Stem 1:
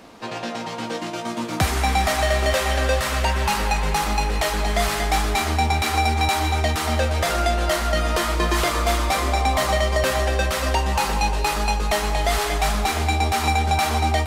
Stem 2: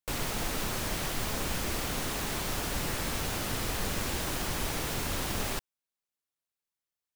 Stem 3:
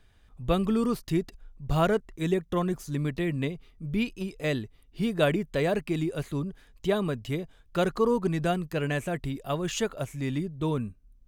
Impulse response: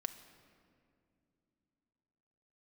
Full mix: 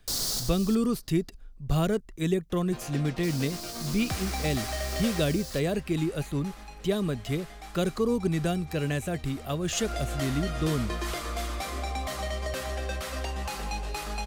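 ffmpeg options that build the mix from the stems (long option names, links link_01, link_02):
-filter_complex "[0:a]adelay=2500,volume=1dB,afade=type=out:start_time=5.13:duration=0.29:silence=0.251189,afade=type=in:start_time=9.68:duration=0.26:silence=0.237137[link_01];[1:a]highshelf=frequency=3400:width_type=q:width=3:gain=11,volume=-6.5dB,asplit=3[link_02][link_03][link_04];[link_02]atrim=end=0.75,asetpts=PTS-STARTPTS,afade=type=out:start_time=0.746:duration=0.004:curve=hsin[link_05];[link_03]atrim=start=0.75:end=3.23,asetpts=PTS-STARTPTS,volume=0[link_06];[link_04]atrim=start=3.23,asetpts=PTS-STARTPTS,afade=type=in:duration=0.004:curve=hsin[link_07];[link_05][link_06][link_07]concat=n=3:v=0:a=1,asplit=2[link_08][link_09];[link_09]volume=-12dB[link_10];[2:a]bass=frequency=250:gain=1,treble=frequency=4000:gain=4,volume=0.5dB,asplit=2[link_11][link_12];[link_12]apad=whole_len=315365[link_13];[link_08][link_13]sidechaincompress=threshold=-43dB:ratio=8:attack=7.8:release=1130[link_14];[3:a]atrim=start_sample=2205[link_15];[link_10][link_15]afir=irnorm=-1:irlink=0[link_16];[link_01][link_14][link_11][link_16]amix=inputs=4:normalize=0,bandreject=frequency=920:width=11,acrossover=split=420|3000[link_17][link_18][link_19];[link_18]acompressor=threshold=-35dB:ratio=2.5[link_20];[link_17][link_20][link_19]amix=inputs=3:normalize=0"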